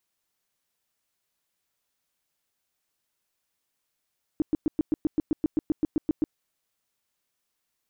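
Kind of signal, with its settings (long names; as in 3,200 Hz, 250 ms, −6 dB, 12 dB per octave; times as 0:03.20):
tone bursts 308 Hz, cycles 6, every 0.13 s, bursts 15, −19 dBFS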